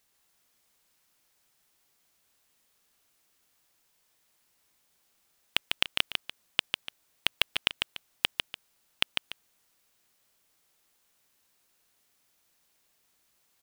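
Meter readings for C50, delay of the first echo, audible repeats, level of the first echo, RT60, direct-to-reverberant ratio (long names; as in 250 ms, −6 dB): no reverb audible, 149 ms, 2, −4.5 dB, no reverb audible, no reverb audible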